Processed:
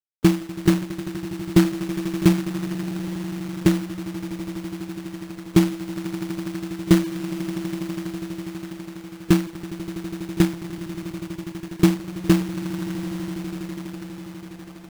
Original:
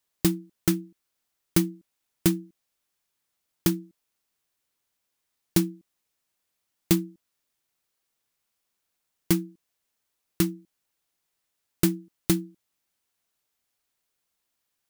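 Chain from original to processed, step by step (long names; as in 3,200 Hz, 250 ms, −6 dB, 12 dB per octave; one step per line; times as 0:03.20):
echo that builds up and dies away 82 ms, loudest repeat 8, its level −17 dB
gate on every frequency bin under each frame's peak −15 dB strong
log-companded quantiser 4 bits
level +7 dB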